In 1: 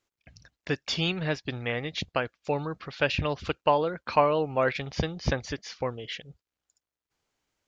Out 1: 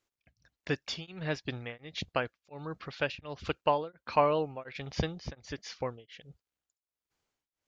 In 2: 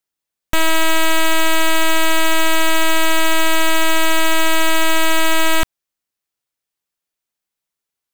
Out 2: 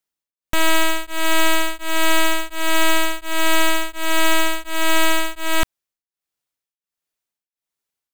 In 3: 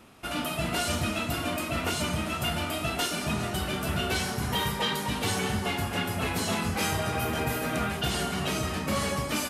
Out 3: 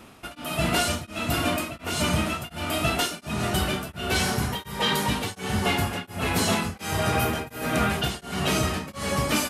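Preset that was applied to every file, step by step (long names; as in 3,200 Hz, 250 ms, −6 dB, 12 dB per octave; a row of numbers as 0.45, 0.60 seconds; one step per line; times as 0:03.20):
tremolo along a rectified sine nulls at 1.4 Hz
normalise the peak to −12 dBFS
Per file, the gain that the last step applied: −2.5, −0.5, +6.0 decibels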